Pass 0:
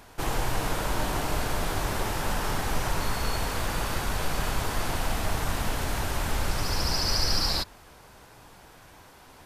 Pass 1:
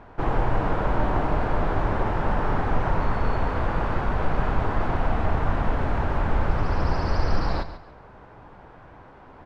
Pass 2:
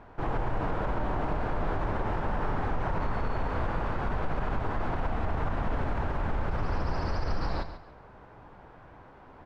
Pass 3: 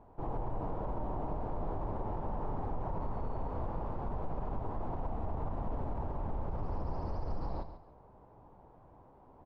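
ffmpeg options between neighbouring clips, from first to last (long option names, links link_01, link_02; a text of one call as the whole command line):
ffmpeg -i in.wav -af "lowpass=1400,aecho=1:1:140|280|420:0.237|0.0617|0.016,volume=5.5dB" out.wav
ffmpeg -i in.wav -af "alimiter=limit=-16.5dB:level=0:latency=1:release=47,volume=-4dB" out.wav
ffmpeg -i in.wav -af "firequalizer=gain_entry='entry(940,0);entry(1500,-15);entry(4900,-12)':delay=0.05:min_phase=1,volume=-6.5dB" out.wav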